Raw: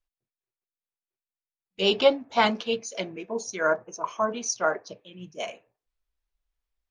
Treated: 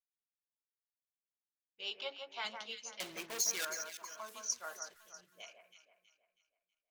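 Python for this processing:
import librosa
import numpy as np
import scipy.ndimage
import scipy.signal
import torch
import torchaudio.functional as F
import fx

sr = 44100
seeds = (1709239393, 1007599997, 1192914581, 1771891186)

y = fx.delta_hold(x, sr, step_db=-42.0, at=(4.28, 5.07))
y = fx.env_lowpass(y, sr, base_hz=1100.0, full_db=-23.0)
y = fx.bass_treble(y, sr, bass_db=-14, treble_db=-11, at=(1.81, 2.45))
y = fx.leveller(y, sr, passes=5, at=(3.0, 3.65))
y = scipy.signal.lfilter([1.0, -0.97], [1.0], y)
y = fx.echo_alternate(y, sr, ms=161, hz=2000.0, feedback_pct=61, wet_db=-5.5)
y = F.gain(torch.from_numpy(y), -4.5).numpy()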